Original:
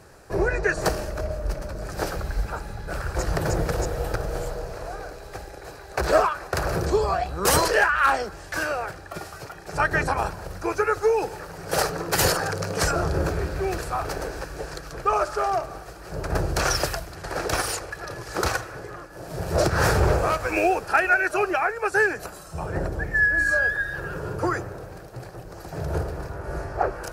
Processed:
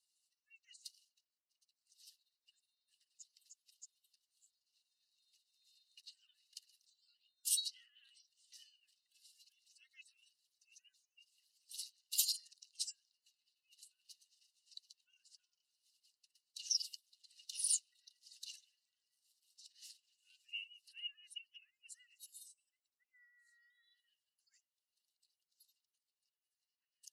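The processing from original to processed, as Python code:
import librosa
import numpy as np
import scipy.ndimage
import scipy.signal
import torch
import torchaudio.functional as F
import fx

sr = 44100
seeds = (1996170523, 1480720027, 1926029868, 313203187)

y = fx.spec_expand(x, sr, power=2.0)
y = y * np.sin(2.0 * np.pi * 250.0 * np.arange(len(y)) / sr)
y = scipy.signal.sosfilt(scipy.signal.cheby1(6, 6, 2800.0, 'highpass', fs=sr, output='sos'), y)
y = y * 10.0 ** (2.5 / 20.0)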